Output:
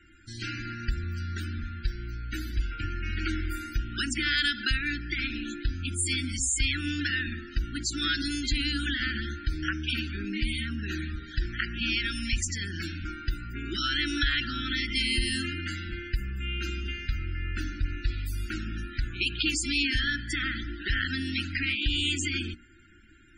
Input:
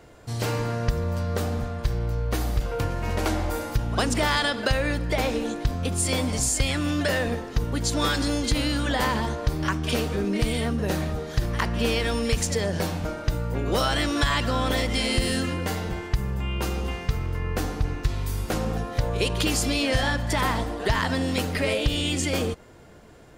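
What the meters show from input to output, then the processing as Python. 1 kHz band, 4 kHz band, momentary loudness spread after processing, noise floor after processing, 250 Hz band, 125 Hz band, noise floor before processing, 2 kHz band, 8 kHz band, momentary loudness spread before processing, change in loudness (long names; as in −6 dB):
−12.5 dB, −0.5 dB, 9 LU, −44 dBFS, −6.5 dB, −7.5 dB, −37 dBFS, 0.0 dB, −4.0 dB, 6 LU, −4.5 dB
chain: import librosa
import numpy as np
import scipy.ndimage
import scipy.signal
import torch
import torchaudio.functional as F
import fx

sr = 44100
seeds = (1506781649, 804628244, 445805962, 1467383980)

y = scipy.signal.sosfilt(scipy.signal.cheby1(4, 1.0, [340.0, 1400.0], 'bandstop', fs=sr, output='sos'), x)
y = fx.peak_eq(y, sr, hz=150.0, db=-14.5, octaves=1.1)
y = fx.hum_notches(y, sr, base_hz=60, count=5)
y = fx.spec_topn(y, sr, count=64)
y = fx.peak_eq(y, sr, hz=2600.0, db=3.0, octaves=0.45)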